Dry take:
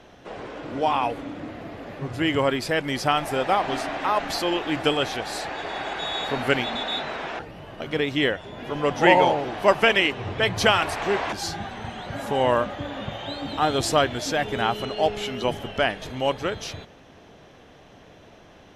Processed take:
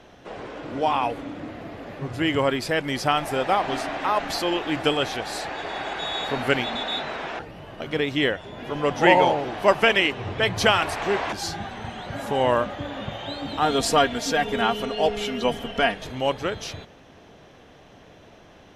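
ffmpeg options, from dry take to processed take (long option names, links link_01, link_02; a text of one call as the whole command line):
ffmpeg -i in.wav -filter_complex "[0:a]asettb=1/sr,asplit=3[link_01][link_02][link_03];[link_01]atrim=end=13.654[link_04];[link_02]atrim=start=13.65:end=15.94,asetpts=PTS-STARTPTS,afade=type=in:duration=0.004:curve=qsin,afade=type=out:start_time=2.286:duration=0.004:curve=qsin,aecho=1:1:4.3:0.65,atrim=end_sample=100989[link_05];[link_03]atrim=start=15.936[link_06];[link_04][link_05]acrossfade=duration=0.004:curve1=hsin:curve2=qsin[link_07];[link_07][link_06]acrossfade=duration=0.004:curve1=qsin:curve2=hsin" out.wav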